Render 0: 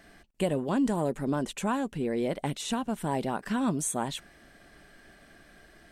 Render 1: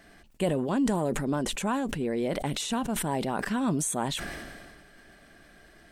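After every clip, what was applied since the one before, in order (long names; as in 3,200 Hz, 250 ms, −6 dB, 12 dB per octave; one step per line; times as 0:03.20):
level that may fall only so fast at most 31 dB per second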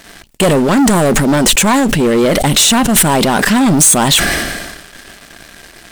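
leveller curve on the samples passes 3
high-shelf EQ 2,300 Hz +8 dB
in parallel at −6 dB: wave folding −17.5 dBFS
on the sum: level +6 dB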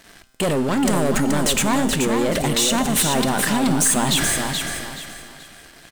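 tuned comb filter 130 Hz, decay 1.8 s, mix 70%
on a send: repeating echo 428 ms, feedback 29%, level −5.5 dB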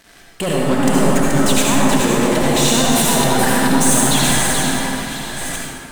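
delay that plays each chunk backwards 695 ms, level −7.5 dB
convolution reverb RT60 1.8 s, pre-delay 58 ms, DRR −3.5 dB
level −1 dB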